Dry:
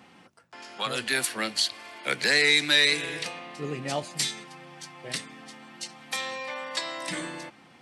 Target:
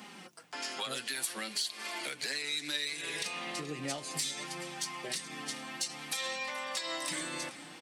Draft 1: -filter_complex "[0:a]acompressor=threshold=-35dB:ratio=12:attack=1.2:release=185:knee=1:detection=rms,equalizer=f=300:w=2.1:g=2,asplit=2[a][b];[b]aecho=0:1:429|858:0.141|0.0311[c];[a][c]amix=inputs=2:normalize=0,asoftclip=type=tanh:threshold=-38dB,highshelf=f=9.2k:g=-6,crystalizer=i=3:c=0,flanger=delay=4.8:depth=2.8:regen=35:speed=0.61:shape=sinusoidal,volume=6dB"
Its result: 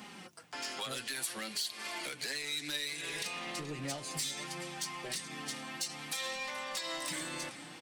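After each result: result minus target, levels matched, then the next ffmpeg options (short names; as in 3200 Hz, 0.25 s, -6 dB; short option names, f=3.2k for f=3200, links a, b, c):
soft clip: distortion +11 dB; 125 Hz band +3.0 dB
-filter_complex "[0:a]acompressor=threshold=-35dB:ratio=12:attack=1.2:release=185:knee=1:detection=rms,equalizer=f=300:w=2.1:g=2,asplit=2[a][b];[b]aecho=0:1:429|858:0.141|0.0311[c];[a][c]amix=inputs=2:normalize=0,asoftclip=type=tanh:threshold=-30.5dB,highshelf=f=9.2k:g=-6,crystalizer=i=3:c=0,flanger=delay=4.8:depth=2.8:regen=35:speed=0.61:shape=sinusoidal,volume=6dB"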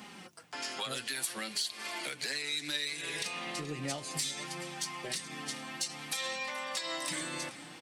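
125 Hz band +3.5 dB
-filter_complex "[0:a]acompressor=threshold=-35dB:ratio=12:attack=1.2:release=185:knee=1:detection=rms,highpass=150,equalizer=f=300:w=2.1:g=2,asplit=2[a][b];[b]aecho=0:1:429|858:0.141|0.0311[c];[a][c]amix=inputs=2:normalize=0,asoftclip=type=tanh:threshold=-30.5dB,highshelf=f=9.2k:g=-6,crystalizer=i=3:c=0,flanger=delay=4.8:depth=2.8:regen=35:speed=0.61:shape=sinusoidal,volume=6dB"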